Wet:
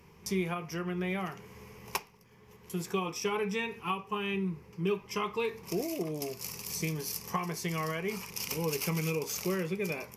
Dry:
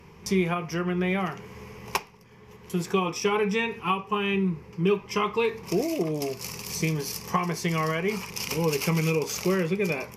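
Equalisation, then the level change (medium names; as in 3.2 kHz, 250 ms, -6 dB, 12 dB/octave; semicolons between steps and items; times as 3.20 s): treble shelf 8.8 kHz +10.5 dB; -7.5 dB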